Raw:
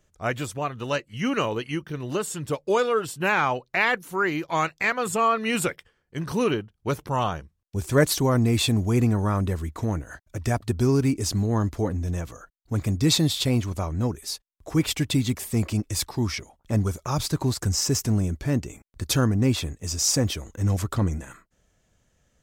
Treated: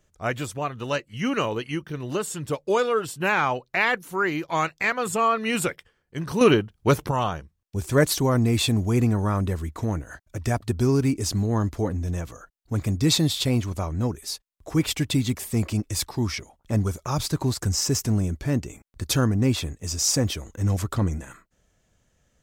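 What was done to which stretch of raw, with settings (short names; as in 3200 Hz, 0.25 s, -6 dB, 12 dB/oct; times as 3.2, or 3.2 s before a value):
6.41–7.11 gain +7 dB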